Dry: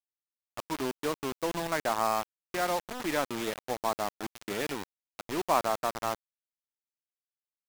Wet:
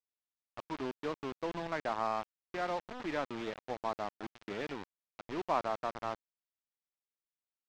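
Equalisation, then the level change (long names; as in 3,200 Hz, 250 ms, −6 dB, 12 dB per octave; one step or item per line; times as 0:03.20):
high-frequency loss of the air 170 metres
−5.0 dB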